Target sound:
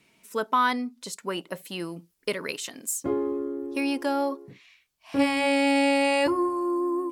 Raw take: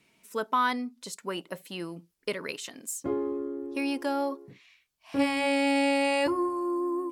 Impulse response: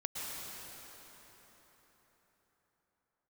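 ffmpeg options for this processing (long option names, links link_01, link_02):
-filter_complex "[0:a]asettb=1/sr,asplit=3[link_01][link_02][link_03];[link_01]atrim=end=1.594[link_04];[link_02]atrim=start=1.59:end=3.8,asetpts=PTS-STARTPTS,afade=type=in:duration=0.004:curve=qsin,afade=type=out:start_time=2.206:duration=0.004:curve=qsin,highshelf=frequency=7800:gain=5[link_05];[link_03]atrim=start=3.796[link_06];[link_04][link_05]acrossfade=duration=0.004:curve1=hsin:curve2=qsin[link_07];[link_07][link_06]acrossfade=duration=0.004:curve1=qsin:curve2=hsin,volume=3dB"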